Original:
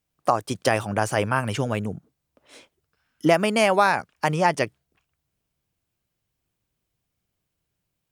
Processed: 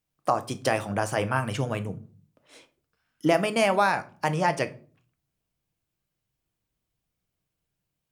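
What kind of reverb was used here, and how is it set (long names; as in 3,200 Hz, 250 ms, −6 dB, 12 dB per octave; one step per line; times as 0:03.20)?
rectangular room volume 310 cubic metres, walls furnished, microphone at 0.59 metres
level −4 dB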